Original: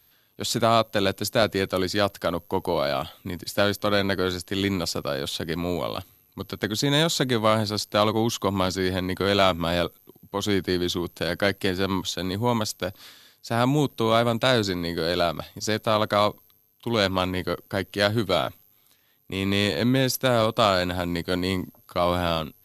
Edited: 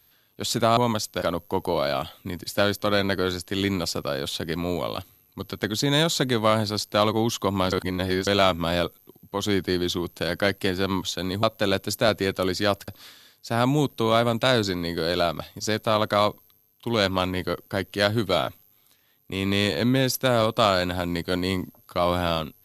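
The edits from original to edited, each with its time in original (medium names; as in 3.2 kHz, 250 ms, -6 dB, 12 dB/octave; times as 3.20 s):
0.77–2.22 s: swap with 12.43–12.88 s
8.72–9.27 s: reverse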